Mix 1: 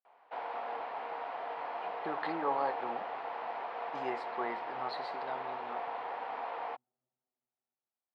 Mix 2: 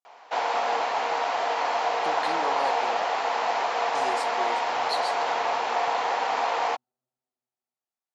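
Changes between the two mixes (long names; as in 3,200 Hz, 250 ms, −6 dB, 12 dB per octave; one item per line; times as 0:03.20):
background +11.5 dB
master: remove high-frequency loss of the air 430 metres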